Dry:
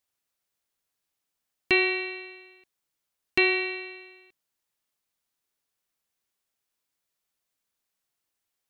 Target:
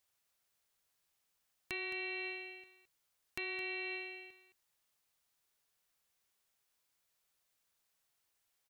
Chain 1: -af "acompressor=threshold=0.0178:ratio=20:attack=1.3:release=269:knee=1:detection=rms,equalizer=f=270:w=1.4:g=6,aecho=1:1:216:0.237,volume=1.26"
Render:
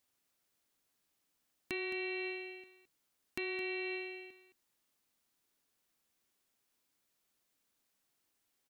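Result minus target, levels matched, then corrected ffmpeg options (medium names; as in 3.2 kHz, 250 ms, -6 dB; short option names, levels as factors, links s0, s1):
250 Hz band +5.0 dB
-af "acompressor=threshold=0.0178:ratio=20:attack=1.3:release=269:knee=1:detection=rms,equalizer=f=270:w=1.4:g=-5.5,aecho=1:1:216:0.237,volume=1.26"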